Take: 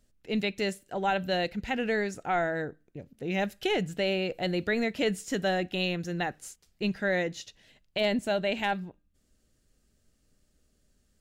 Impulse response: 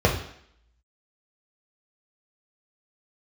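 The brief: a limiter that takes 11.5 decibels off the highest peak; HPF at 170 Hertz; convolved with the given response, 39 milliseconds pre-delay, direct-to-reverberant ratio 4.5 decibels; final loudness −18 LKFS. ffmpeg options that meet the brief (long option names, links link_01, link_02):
-filter_complex "[0:a]highpass=170,alimiter=level_in=3dB:limit=-24dB:level=0:latency=1,volume=-3dB,asplit=2[link_01][link_02];[1:a]atrim=start_sample=2205,adelay=39[link_03];[link_02][link_03]afir=irnorm=-1:irlink=0,volume=-22.5dB[link_04];[link_01][link_04]amix=inputs=2:normalize=0,volume=17dB"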